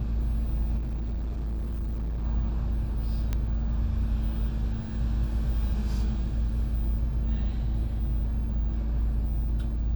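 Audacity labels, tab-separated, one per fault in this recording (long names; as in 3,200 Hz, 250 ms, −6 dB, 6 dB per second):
0.770000	2.250000	clipping −27.5 dBFS
3.330000	3.330000	click −16 dBFS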